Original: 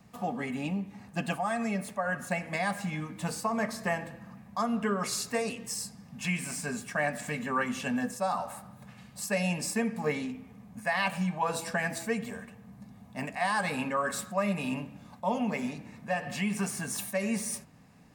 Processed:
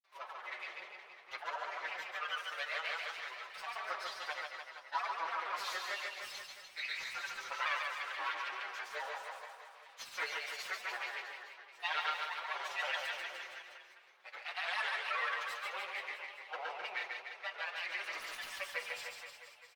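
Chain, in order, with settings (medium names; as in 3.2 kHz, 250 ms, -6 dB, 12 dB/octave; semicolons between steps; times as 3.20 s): comb filter that takes the minimum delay 5.7 ms; high-pass 570 Hz 24 dB/octave; differentiator; comb 4.9 ms, depth 67%; granulator, pitch spread up and down by 3 st; distance through air 280 m; reverse bouncing-ball echo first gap 130 ms, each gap 1.1×, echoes 5; reverberation RT60 0.35 s, pre-delay 5 ms, DRR 10 dB; speed mistake 48 kHz file played as 44.1 kHz; trim +9.5 dB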